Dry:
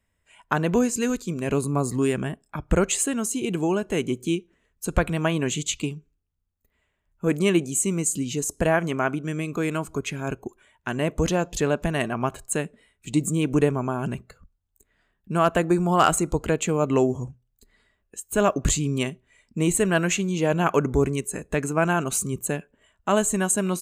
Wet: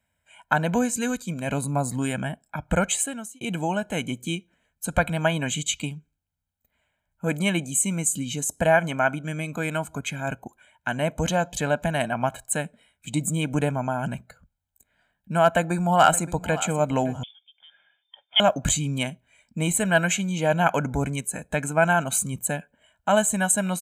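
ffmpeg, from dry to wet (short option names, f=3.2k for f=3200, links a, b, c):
-filter_complex "[0:a]asplit=2[a][b];[b]afade=t=in:st=15.44:d=0.01,afade=t=out:st=16.58:d=0.01,aecho=0:1:570|1140:0.149624|0.0224435[c];[a][c]amix=inputs=2:normalize=0,asettb=1/sr,asplit=3[d][e][f];[d]atrim=end=17.234[g];[e]atrim=start=17.23:end=18.4,asetpts=PTS-STARTPTS,afade=t=in:d=0.004:c=qsin,afade=t=out:st=1.166:d=0.004:c=qsin,lowpass=f=3.1k:t=q:w=0.5098,lowpass=f=3.1k:t=q:w=0.6013,lowpass=f=3.1k:t=q:w=0.9,lowpass=f=3.1k:t=q:w=2.563,afreqshift=-3600[h];[f]atrim=start=18.396[i];[g][h]acrossfade=d=0.004:c1=hsin:c2=qsin[j];[j][i]acrossfade=d=0.004:c1=qsin:c2=hsin,asplit=2[k][l];[k]atrim=end=3.41,asetpts=PTS-STARTPTS,afade=t=out:st=2.88:d=0.53[m];[l]atrim=start=3.41,asetpts=PTS-STARTPTS,afade=t=in:d=0.004:c=hsin[n];[m][n]concat=n=2:v=0:a=1,highpass=f=180:p=1,equalizer=f=5.1k:t=o:w=0.43:g=-5.5,aecho=1:1:1.3:0.79"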